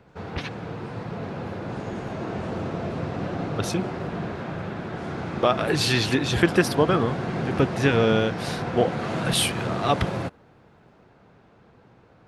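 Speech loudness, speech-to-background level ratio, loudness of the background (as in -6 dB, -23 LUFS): -24.0 LUFS, 6.5 dB, -30.5 LUFS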